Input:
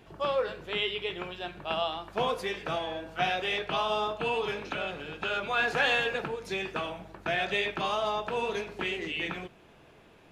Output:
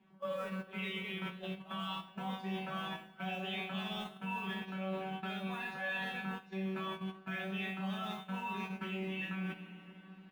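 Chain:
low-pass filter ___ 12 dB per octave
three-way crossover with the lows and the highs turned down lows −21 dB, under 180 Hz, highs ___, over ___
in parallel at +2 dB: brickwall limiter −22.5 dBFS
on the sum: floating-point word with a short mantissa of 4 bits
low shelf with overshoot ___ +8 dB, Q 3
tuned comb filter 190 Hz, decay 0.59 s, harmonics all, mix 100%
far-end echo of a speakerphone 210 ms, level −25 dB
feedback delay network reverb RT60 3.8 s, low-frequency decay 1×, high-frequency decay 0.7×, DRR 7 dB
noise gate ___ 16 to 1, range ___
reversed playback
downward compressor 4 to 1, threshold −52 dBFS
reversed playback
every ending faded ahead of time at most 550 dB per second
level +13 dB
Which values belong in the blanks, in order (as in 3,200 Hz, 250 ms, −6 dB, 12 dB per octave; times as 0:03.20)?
6,700 Hz, −13 dB, 3,300 Hz, 280 Hz, −46 dBFS, −9 dB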